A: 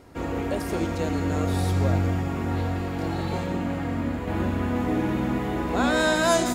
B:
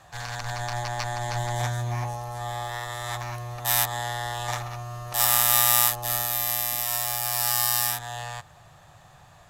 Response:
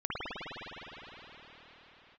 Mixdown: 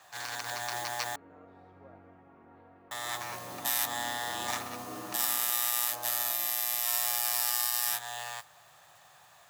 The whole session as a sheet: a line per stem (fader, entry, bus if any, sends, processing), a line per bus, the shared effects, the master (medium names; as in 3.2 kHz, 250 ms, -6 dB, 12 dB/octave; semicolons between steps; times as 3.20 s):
2.97 s -18.5 dB -> 3.46 s -9.5 dB -> 5.41 s -9.5 dB -> 5.83 s -21 dB, 0.00 s, no send, low-pass 1.2 kHz 12 dB/octave
-1.5 dB, 0.00 s, muted 1.16–2.91 s, no send, modulation noise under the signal 13 dB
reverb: none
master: high-pass 950 Hz 6 dB/octave; peak limiter -14 dBFS, peak gain reduction 10.5 dB